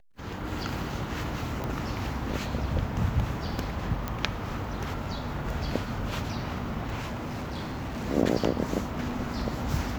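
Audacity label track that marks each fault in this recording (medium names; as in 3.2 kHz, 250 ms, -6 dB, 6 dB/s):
1.640000	1.640000	pop -19 dBFS
4.080000	4.080000	pop -16 dBFS
6.980000	8.070000	clipped -30 dBFS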